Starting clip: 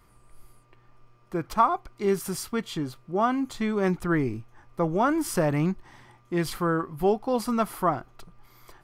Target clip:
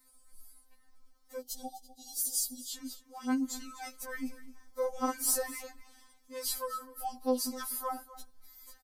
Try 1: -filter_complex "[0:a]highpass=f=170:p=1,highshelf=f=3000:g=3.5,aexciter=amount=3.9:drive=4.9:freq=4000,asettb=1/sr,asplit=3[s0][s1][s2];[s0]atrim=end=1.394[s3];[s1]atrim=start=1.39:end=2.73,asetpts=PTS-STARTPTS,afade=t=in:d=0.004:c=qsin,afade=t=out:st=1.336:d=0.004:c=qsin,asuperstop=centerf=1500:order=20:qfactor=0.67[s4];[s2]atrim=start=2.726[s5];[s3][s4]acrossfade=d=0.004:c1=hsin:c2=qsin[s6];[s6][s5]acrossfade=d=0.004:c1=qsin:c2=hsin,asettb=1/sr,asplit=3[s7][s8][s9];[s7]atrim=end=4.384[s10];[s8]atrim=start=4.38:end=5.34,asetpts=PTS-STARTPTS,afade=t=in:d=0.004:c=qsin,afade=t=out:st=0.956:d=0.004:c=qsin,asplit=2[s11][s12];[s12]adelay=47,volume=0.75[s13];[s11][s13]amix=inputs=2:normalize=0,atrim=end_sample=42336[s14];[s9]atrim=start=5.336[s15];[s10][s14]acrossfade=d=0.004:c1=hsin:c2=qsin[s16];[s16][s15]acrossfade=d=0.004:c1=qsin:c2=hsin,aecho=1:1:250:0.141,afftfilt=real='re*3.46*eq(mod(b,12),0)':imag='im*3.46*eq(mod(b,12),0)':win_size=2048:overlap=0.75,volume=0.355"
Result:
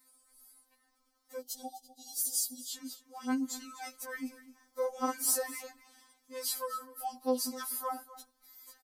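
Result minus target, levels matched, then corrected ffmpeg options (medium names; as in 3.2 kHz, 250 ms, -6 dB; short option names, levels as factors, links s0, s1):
125 Hz band -5.0 dB
-filter_complex "[0:a]highshelf=f=3000:g=3.5,aexciter=amount=3.9:drive=4.9:freq=4000,asettb=1/sr,asplit=3[s0][s1][s2];[s0]atrim=end=1.394[s3];[s1]atrim=start=1.39:end=2.73,asetpts=PTS-STARTPTS,afade=t=in:d=0.004:c=qsin,afade=t=out:st=1.336:d=0.004:c=qsin,asuperstop=centerf=1500:order=20:qfactor=0.67[s4];[s2]atrim=start=2.726[s5];[s3][s4]acrossfade=d=0.004:c1=hsin:c2=qsin[s6];[s6][s5]acrossfade=d=0.004:c1=qsin:c2=hsin,asettb=1/sr,asplit=3[s7][s8][s9];[s7]atrim=end=4.384[s10];[s8]atrim=start=4.38:end=5.34,asetpts=PTS-STARTPTS,afade=t=in:d=0.004:c=qsin,afade=t=out:st=0.956:d=0.004:c=qsin,asplit=2[s11][s12];[s12]adelay=47,volume=0.75[s13];[s11][s13]amix=inputs=2:normalize=0,atrim=end_sample=42336[s14];[s9]atrim=start=5.336[s15];[s10][s14]acrossfade=d=0.004:c1=hsin:c2=qsin[s16];[s16][s15]acrossfade=d=0.004:c1=qsin:c2=hsin,aecho=1:1:250:0.141,afftfilt=real='re*3.46*eq(mod(b,12),0)':imag='im*3.46*eq(mod(b,12),0)':win_size=2048:overlap=0.75,volume=0.355"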